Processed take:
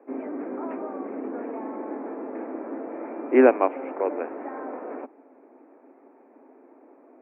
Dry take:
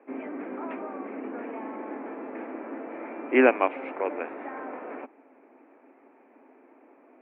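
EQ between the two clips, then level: HPF 310 Hz 12 dB/oct; LPF 2100 Hz 12 dB/oct; tilt -3.5 dB/oct; +1.0 dB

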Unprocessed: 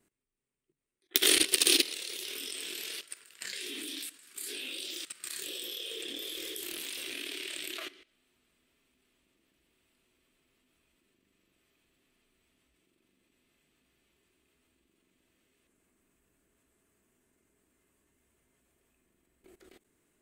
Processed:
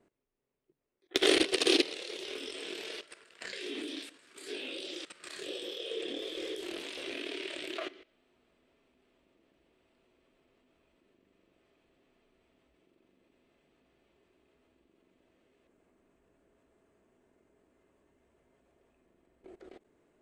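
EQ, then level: air absorption 90 m; low shelf 350 Hz +3 dB; bell 610 Hz +11.5 dB 1.8 oct; -1.5 dB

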